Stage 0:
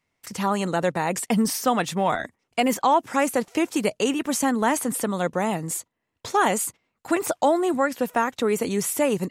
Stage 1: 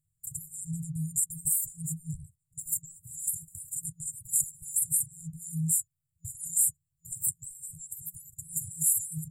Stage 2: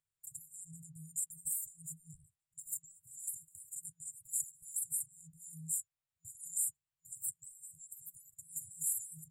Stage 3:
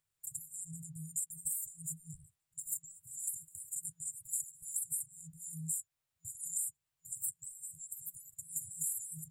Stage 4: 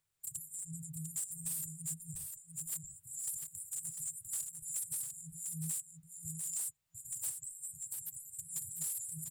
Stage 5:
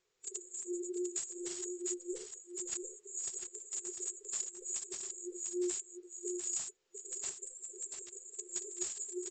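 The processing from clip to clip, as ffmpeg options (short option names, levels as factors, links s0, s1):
-af "afftfilt=real='re*(1-between(b*sr/4096,170,7000))':imag='im*(1-between(b*sr/4096,170,7000))':win_size=4096:overlap=0.75,acontrast=73,volume=0.75"
-filter_complex "[0:a]acrossover=split=420 4100:gain=0.0794 1 0.251[s0][s1][s2];[s0][s1][s2]amix=inputs=3:normalize=0,volume=1.19"
-af "acompressor=threshold=0.0112:ratio=6,volume=1.88"
-filter_complex "[0:a]acrossover=split=5700[s0][s1];[s1]asoftclip=type=hard:threshold=0.0126[s2];[s0][s2]amix=inputs=2:normalize=0,aecho=1:1:698:0.501,volume=1.19"
-af "afftfilt=real='real(if(between(b,1,1008),(2*floor((b-1)/24)+1)*24-b,b),0)':imag='imag(if(between(b,1,1008),(2*floor((b-1)/24)+1)*24-b,b),0)*if(between(b,1,1008),-1,1)':win_size=2048:overlap=0.75,aresample=16000,aresample=44100,volume=2.24"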